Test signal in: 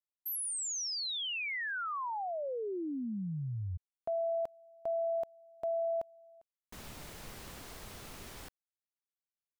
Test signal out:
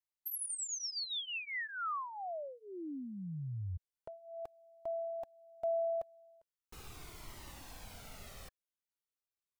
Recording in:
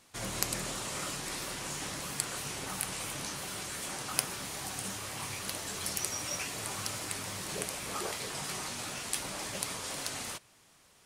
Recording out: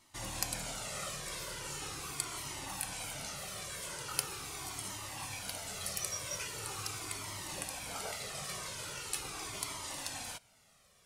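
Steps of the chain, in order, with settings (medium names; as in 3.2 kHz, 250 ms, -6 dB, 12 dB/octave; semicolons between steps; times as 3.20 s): dynamic bell 220 Hz, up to -5 dB, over -58 dBFS, Q 3; band-stop 1.7 kHz, Q 17; Shepard-style flanger falling 0.41 Hz; trim +1 dB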